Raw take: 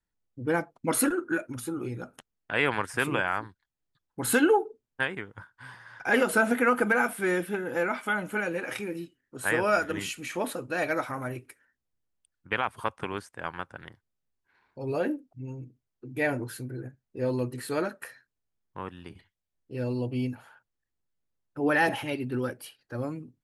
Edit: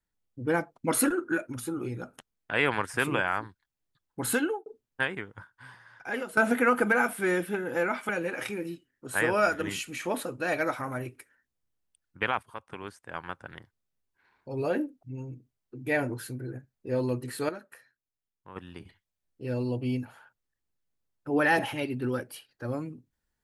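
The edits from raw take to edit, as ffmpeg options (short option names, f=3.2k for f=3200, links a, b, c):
-filter_complex "[0:a]asplit=7[a][b][c][d][e][f][g];[a]atrim=end=4.66,asetpts=PTS-STARTPTS,afade=t=out:st=4.2:d=0.46[h];[b]atrim=start=4.66:end=6.37,asetpts=PTS-STARTPTS,afade=t=in:d=0.004:c=hsin,afade=t=out:st=0.56:d=1.15:silence=0.177828[i];[c]atrim=start=6.37:end=8.092,asetpts=PTS-STARTPTS,afade=t=in:d=0.004:c=hsin:silence=0.177828[j];[d]atrim=start=8.388:end=12.73,asetpts=PTS-STARTPTS,afade=t=out:st=4.338:d=0.004:c=hsin:silence=0.188365[k];[e]atrim=start=12.73:end=17.792,asetpts=PTS-STARTPTS,afade=t=in:d=1.09:silence=0.188365[l];[f]atrim=start=17.788:end=18.862,asetpts=PTS-STARTPTS,volume=-10dB[m];[g]atrim=start=18.858[n];[h][i][j]concat=n=3:v=0:a=1[o];[k][l]concat=n=2:v=0:a=1[p];[o][p]acrossfade=d=0.004:c1=hsin:c2=hsin[q];[q][m]acrossfade=d=0.004:c1=hsin:c2=hsin[r];[r][n]acrossfade=d=0.004:c1=hsin:c2=hsin"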